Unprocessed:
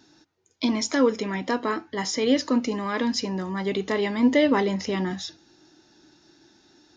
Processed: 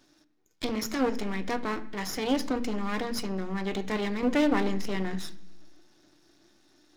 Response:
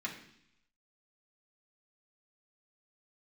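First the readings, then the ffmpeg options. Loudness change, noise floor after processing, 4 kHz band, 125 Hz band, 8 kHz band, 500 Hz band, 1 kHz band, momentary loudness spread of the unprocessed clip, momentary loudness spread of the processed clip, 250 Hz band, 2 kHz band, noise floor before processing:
-5.5 dB, -66 dBFS, -6.5 dB, -3.5 dB, no reading, -6.5 dB, -4.0 dB, 8 LU, 9 LU, -5.5 dB, -4.5 dB, -63 dBFS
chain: -filter_complex "[0:a]aeval=exprs='max(val(0),0)':c=same,asplit=2[s0][s1];[1:a]atrim=start_sample=2205,lowshelf=f=440:g=5.5[s2];[s1][s2]afir=irnorm=-1:irlink=0,volume=0.316[s3];[s0][s3]amix=inputs=2:normalize=0,volume=0.668"

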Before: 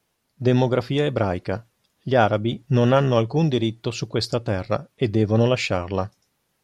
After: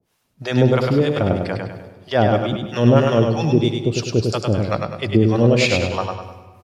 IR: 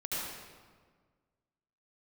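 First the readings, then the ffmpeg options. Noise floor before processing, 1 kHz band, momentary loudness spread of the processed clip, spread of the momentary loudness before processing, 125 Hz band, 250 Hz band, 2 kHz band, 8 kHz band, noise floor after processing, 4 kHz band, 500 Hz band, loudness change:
-72 dBFS, +1.5 dB, 11 LU, 10 LU, +4.0 dB, +4.5 dB, +4.0 dB, +6.0 dB, -68 dBFS, +3.5 dB, +3.0 dB, +3.5 dB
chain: -filter_complex "[0:a]acrossover=split=630[s0][s1];[s0]aeval=exprs='val(0)*(1-1/2+1/2*cos(2*PI*3.1*n/s))':c=same[s2];[s1]aeval=exprs='val(0)*(1-1/2-1/2*cos(2*PI*3.1*n/s))':c=same[s3];[s2][s3]amix=inputs=2:normalize=0,aecho=1:1:101|202|303|404|505:0.631|0.252|0.101|0.0404|0.0162,asplit=2[s4][s5];[1:a]atrim=start_sample=2205[s6];[s5][s6]afir=irnorm=-1:irlink=0,volume=0.15[s7];[s4][s7]amix=inputs=2:normalize=0,volume=2"

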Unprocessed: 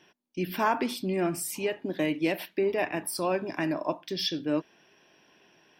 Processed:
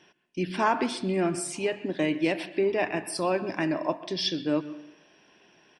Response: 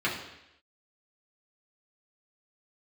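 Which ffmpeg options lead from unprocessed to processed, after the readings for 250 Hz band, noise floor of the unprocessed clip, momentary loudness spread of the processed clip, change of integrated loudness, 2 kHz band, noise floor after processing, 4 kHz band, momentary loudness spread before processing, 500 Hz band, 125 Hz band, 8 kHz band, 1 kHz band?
+2.0 dB, -63 dBFS, 5 LU, +1.5 dB, +1.5 dB, -61 dBFS, +1.5 dB, 5 LU, +1.5 dB, +2.0 dB, 0.0 dB, +1.5 dB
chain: -filter_complex "[0:a]asplit=2[s0][s1];[1:a]atrim=start_sample=2205,adelay=122[s2];[s1][s2]afir=irnorm=-1:irlink=0,volume=0.0596[s3];[s0][s3]amix=inputs=2:normalize=0,aresample=22050,aresample=44100,volume=1.19"

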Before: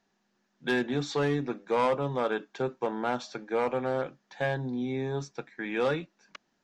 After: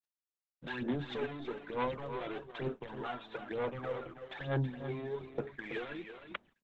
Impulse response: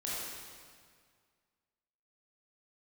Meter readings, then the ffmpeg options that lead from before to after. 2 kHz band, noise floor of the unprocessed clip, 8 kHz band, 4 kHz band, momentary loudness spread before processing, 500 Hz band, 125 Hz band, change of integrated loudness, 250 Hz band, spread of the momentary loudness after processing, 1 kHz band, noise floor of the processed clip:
-8.5 dB, -75 dBFS, no reading, -7.5 dB, 8 LU, -9.5 dB, -4.5 dB, -9.0 dB, -8.5 dB, 8 LU, -9.5 dB, under -85 dBFS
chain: -af "aresample=8000,volume=29.9,asoftclip=hard,volume=0.0335,aresample=44100,acompressor=threshold=0.00398:ratio=6,aphaser=in_gain=1:out_gain=1:delay=3:decay=0.73:speed=1.1:type=sinusoidal,agate=range=0.002:threshold=0.001:ratio=16:detection=peak,tremolo=f=2.6:d=0.37,aecho=1:1:327:0.335,volume=2.51" -ar 48000 -c:a libopus -b:a 12k

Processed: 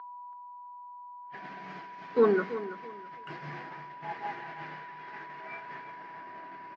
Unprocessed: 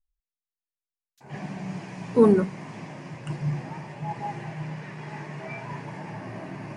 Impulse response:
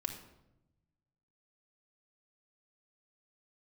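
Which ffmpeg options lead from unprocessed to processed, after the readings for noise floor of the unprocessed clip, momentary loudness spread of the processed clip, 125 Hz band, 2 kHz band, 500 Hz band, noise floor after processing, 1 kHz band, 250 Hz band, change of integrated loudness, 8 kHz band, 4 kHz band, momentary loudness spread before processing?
under -85 dBFS, 20 LU, -17.5 dB, +0.5 dB, -4.0 dB, -47 dBFS, -1.0 dB, -11.5 dB, -6.5 dB, no reading, -4.5 dB, 19 LU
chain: -af "agate=range=0.0224:threshold=0.0282:ratio=3:detection=peak,dynaudnorm=f=300:g=11:m=1.5,aeval=exprs='val(0)+0.02*sin(2*PI*980*n/s)':c=same,highpass=490,equalizer=f=570:t=q:w=4:g=-8,equalizer=f=920:t=q:w=4:g=-10,equalizer=f=1500:t=q:w=4:g=5,equalizer=f=2600:t=q:w=4:g=-5,lowpass=f=4100:w=0.5412,lowpass=f=4100:w=1.3066,aecho=1:1:330|660|990:0.211|0.055|0.0143"

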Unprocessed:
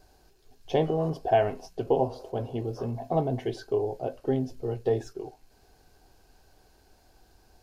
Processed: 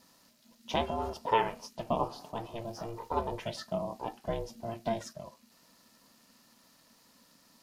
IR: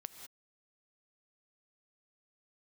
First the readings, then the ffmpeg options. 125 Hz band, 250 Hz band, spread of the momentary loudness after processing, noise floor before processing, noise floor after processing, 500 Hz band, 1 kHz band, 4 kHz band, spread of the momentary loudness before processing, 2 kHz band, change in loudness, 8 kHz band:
-10.5 dB, -7.5 dB, 13 LU, -62 dBFS, -64 dBFS, -8.5 dB, -0.5 dB, +3.5 dB, 10 LU, +0.5 dB, -6.0 dB, no reading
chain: -af "aeval=exprs='val(0)*sin(2*PI*230*n/s)':c=same,tiltshelf=f=940:g=-7.5"

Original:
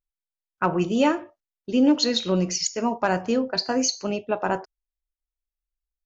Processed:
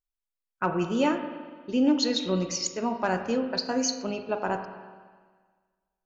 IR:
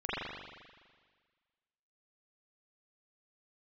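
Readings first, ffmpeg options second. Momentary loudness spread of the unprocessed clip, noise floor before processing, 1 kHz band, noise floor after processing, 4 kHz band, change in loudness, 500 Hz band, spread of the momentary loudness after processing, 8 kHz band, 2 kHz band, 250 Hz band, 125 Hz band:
8 LU, under -85 dBFS, -3.5 dB, under -85 dBFS, -4.5 dB, -4.0 dB, -4.0 dB, 10 LU, no reading, -3.5 dB, -3.5 dB, -4.5 dB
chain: -filter_complex "[0:a]asplit=2[s0][s1];[1:a]atrim=start_sample=2205[s2];[s1][s2]afir=irnorm=-1:irlink=0,volume=0.2[s3];[s0][s3]amix=inputs=2:normalize=0,volume=0.531"

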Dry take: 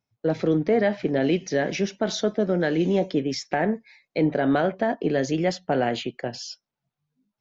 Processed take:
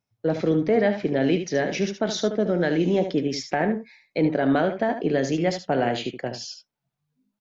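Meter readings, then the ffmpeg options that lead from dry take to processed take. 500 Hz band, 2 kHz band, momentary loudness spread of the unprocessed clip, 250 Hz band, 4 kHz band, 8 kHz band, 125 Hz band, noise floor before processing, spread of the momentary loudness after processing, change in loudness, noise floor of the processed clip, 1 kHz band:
+0.5 dB, +0.5 dB, 10 LU, +0.5 dB, +0.5 dB, no reading, +0.5 dB, under -85 dBFS, 10 LU, +0.5 dB, -83 dBFS, +0.5 dB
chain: -af "aecho=1:1:74:0.355"

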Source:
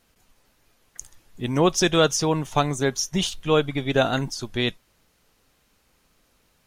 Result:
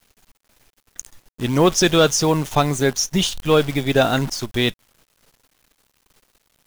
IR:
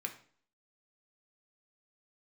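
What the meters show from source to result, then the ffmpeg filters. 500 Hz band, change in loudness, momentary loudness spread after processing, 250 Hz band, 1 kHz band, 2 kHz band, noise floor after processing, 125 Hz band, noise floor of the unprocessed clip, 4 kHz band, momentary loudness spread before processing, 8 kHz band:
+4.0 dB, +4.5 dB, 14 LU, +4.5 dB, +3.5 dB, +4.0 dB, -72 dBFS, +4.5 dB, -66 dBFS, +4.0 dB, 15 LU, +5.0 dB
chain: -af "acontrast=84,acrusher=bits=6:dc=4:mix=0:aa=0.000001,volume=0.794"

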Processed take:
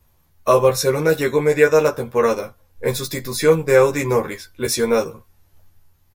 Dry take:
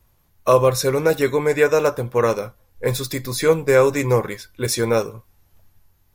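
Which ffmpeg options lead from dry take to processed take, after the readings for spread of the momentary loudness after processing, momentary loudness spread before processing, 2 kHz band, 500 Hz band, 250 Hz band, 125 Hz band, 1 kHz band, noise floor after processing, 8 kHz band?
12 LU, 11 LU, +1.5 dB, +1.5 dB, +1.0 dB, -1.5 dB, +0.5 dB, -59 dBFS, +1.0 dB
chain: -filter_complex "[0:a]asplit=2[s0][s1];[s1]adelay=13,volume=0.75[s2];[s0][s2]amix=inputs=2:normalize=0,volume=0.891"

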